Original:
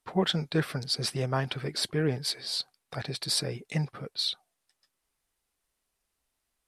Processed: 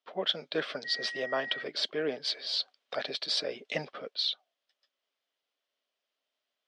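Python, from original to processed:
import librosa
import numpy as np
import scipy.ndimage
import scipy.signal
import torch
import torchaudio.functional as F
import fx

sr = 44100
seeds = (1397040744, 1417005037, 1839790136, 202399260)

y = fx.dmg_tone(x, sr, hz=1900.0, level_db=-35.0, at=(0.84, 1.62), fade=0.02)
y = fx.cabinet(y, sr, low_hz=270.0, low_slope=24, high_hz=5500.0, hz=(340.0, 600.0, 870.0, 3200.0), db=(-6, 8, -5, 8))
y = fx.rider(y, sr, range_db=5, speed_s=0.5)
y = F.gain(torch.from_numpy(y), -1.5).numpy()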